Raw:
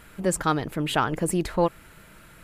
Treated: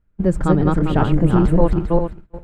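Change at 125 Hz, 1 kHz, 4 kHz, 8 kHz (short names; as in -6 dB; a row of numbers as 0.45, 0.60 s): +13.5 dB, +2.5 dB, -5.5 dB, under -10 dB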